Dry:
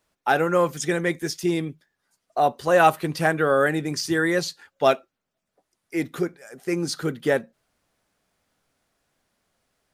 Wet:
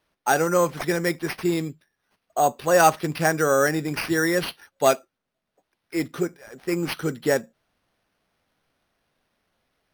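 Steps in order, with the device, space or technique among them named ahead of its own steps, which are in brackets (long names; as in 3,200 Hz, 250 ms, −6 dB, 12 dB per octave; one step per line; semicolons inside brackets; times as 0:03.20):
crushed at another speed (tape speed factor 0.5×; decimation without filtering 12×; tape speed factor 2×)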